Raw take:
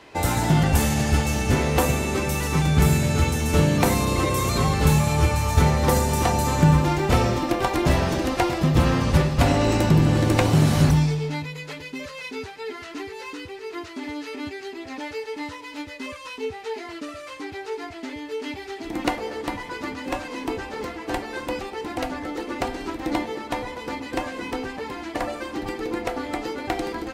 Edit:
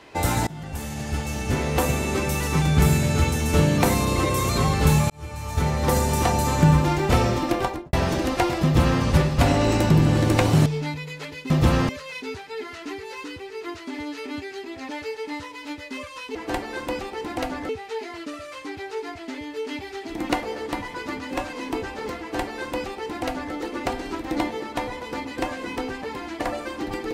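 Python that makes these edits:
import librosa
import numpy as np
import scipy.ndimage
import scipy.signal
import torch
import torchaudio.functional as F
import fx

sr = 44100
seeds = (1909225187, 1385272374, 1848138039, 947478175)

y = fx.studio_fade_out(x, sr, start_s=7.56, length_s=0.37)
y = fx.edit(y, sr, fx.fade_in_from(start_s=0.47, length_s=1.66, floor_db=-23.0),
    fx.fade_in_span(start_s=5.1, length_s=0.95),
    fx.duplicate(start_s=8.63, length_s=0.39, to_s=11.98),
    fx.cut(start_s=10.66, length_s=0.48),
    fx.duplicate(start_s=20.95, length_s=1.34, to_s=16.44), tone=tone)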